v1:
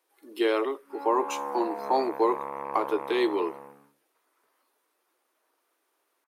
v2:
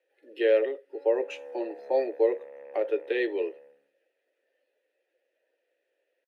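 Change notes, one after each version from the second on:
speech +10.5 dB
master: add formant filter e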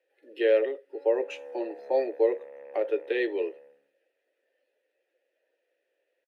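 nothing changed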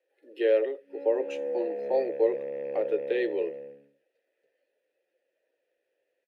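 background: remove resonant band-pass 1,100 Hz, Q 2.3
master: add parametric band 2,100 Hz −4 dB 2.6 octaves

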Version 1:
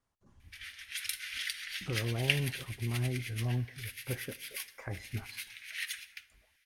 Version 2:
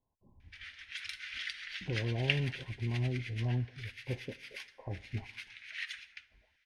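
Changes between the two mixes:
speech: add linear-phase brick-wall low-pass 1,100 Hz
master: add high-frequency loss of the air 140 metres

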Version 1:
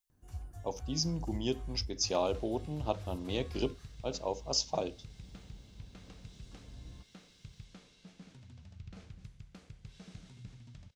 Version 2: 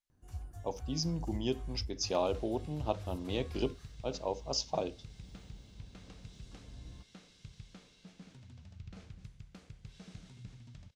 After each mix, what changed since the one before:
speech: add high-frequency loss of the air 70 metres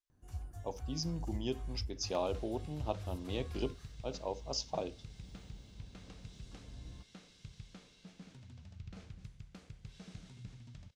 speech −3.5 dB

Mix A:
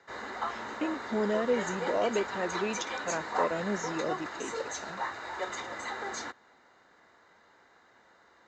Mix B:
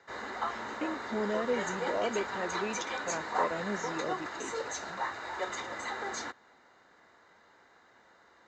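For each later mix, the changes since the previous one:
speech −3.5 dB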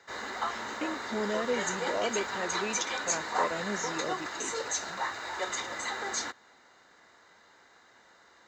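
master: add high-shelf EQ 3,000 Hz +10 dB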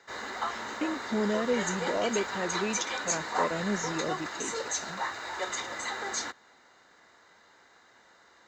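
speech: add low-shelf EQ 230 Hz +11.5 dB

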